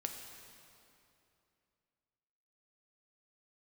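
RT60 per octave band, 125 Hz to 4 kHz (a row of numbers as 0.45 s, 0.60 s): 3.0 s, 3.0 s, 2.9 s, 2.7 s, 2.5 s, 2.2 s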